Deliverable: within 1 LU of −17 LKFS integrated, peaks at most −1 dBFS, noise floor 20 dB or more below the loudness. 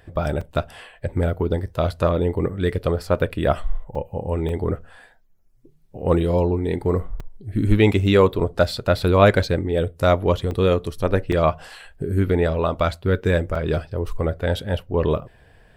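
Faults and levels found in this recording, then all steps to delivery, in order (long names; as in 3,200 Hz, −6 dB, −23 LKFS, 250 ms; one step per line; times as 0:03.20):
number of dropouts 8; longest dropout 3.8 ms; integrated loudness −21.5 LKFS; sample peak −2.0 dBFS; target loudness −17.0 LKFS
→ repair the gap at 0:00.41/0:03.95/0:04.49/0:07.20/0:09.43/0:10.51/0:11.32/0:13.55, 3.8 ms
level +4.5 dB
brickwall limiter −1 dBFS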